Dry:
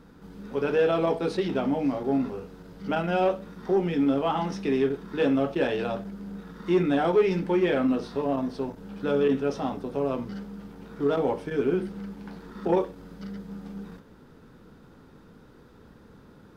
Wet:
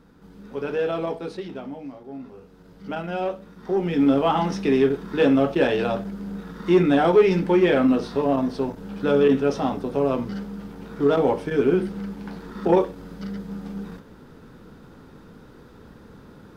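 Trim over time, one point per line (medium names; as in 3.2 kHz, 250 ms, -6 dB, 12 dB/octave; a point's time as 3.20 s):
0.99 s -2 dB
2.09 s -13 dB
2.69 s -3 dB
3.54 s -3 dB
4.07 s +5.5 dB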